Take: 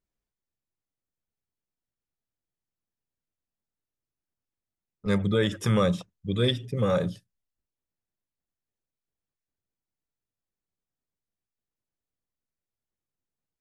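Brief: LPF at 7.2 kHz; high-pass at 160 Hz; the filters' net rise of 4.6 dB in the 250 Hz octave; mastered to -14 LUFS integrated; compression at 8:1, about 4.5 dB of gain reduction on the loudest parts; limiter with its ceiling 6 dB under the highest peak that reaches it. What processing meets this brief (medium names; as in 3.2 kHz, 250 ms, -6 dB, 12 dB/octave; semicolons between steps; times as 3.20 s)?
high-pass 160 Hz; low-pass 7.2 kHz; peaking EQ 250 Hz +8 dB; compression 8:1, threshold -21 dBFS; trim +16.5 dB; peak limiter -3 dBFS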